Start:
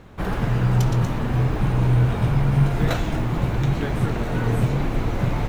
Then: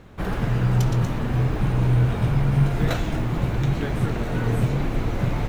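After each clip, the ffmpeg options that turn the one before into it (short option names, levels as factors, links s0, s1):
-af "equalizer=f=930:t=o:w=0.77:g=-2,volume=0.891"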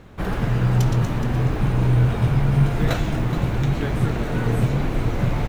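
-af "aecho=1:1:422:0.237,volume=1.19"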